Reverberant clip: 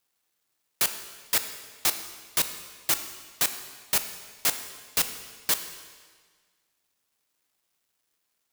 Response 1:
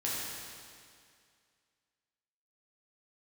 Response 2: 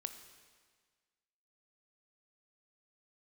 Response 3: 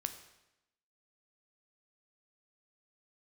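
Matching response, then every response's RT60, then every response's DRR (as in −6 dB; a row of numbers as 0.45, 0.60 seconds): 2; 2.2, 1.6, 0.90 seconds; −7.0, 8.0, 7.5 decibels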